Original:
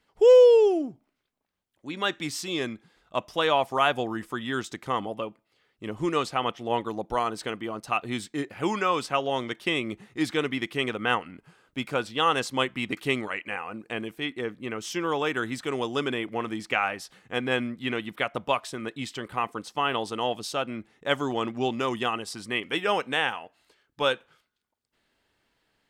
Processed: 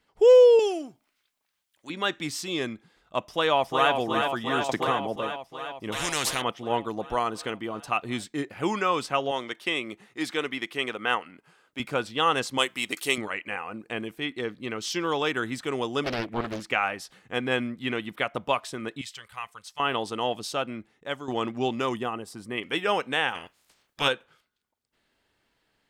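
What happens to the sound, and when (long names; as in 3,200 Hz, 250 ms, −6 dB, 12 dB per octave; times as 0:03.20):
0:00.59–0:01.90: tilt shelving filter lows −9.5 dB, about 830 Hz
0:03.26–0:03.92: delay throw 360 ms, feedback 75%, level −5 dB
0:04.69–0:05.16: multiband upward and downward compressor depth 100%
0:05.92–0:06.42: every bin compressed towards the loudest bin 4 to 1
0:09.31–0:11.80: high-pass filter 420 Hz 6 dB per octave
0:12.58–0:13.18: bass and treble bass −13 dB, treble +14 dB
0:14.34–0:15.32: parametric band 4,300 Hz +9 dB 0.69 octaves
0:16.04–0:16.65: highs frequency-modulated by the lows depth 0.77 ms
0:19.01–0:19.80: guitar amp tone stack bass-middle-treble 10-0-10
0:20.61–0:21.28: fade out, to −11.5 dB
0:21.97–0:22.58: parametric band 3,900 Hz −10.5 dB 2.8 octaves
0:23.34–0:24.07: ceiling on every frequency bin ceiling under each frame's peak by 22 dB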